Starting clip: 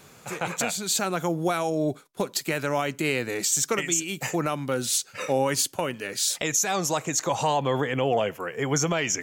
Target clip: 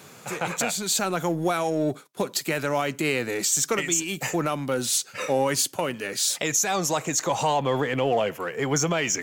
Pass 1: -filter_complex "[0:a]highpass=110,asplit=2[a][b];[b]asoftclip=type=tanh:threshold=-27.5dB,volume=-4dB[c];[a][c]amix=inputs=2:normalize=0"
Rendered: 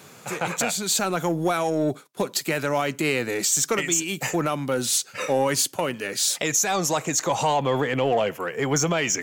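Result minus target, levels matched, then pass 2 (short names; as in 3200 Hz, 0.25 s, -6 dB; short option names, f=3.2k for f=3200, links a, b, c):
soft clip: distortion -4 dB
-filter_complex "[0:a]highpass=110,asplit=2[a][b];[b]asoftclip=type=tanh:threshold=-37dB,volume=-4dB[c];[a][c]amix=inputs=2:normalize=0"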